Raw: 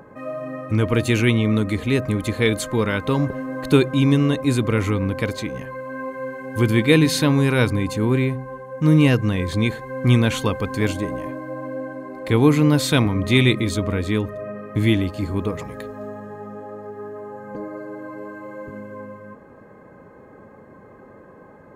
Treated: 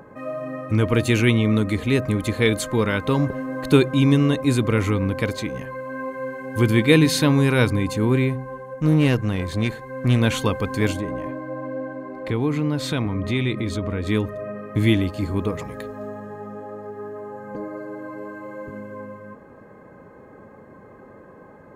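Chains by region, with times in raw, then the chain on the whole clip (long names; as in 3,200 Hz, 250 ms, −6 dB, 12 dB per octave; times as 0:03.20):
0:08.74–0:10.22: tube saturation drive 10 dB, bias 0.6 + notch filter 3,300 Hz, Q 29
0:10.99–0:14.07: high-shelf EQ 5,700 Hz −12 dB + downward compressor 2 to 1, threshold −23 dBFS
whole clip: no processing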